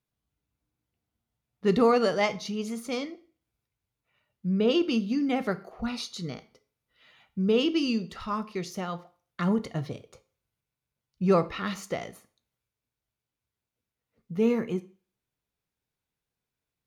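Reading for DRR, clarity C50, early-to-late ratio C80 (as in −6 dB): 12.0 dB, 18.0 dB, 22.5 dB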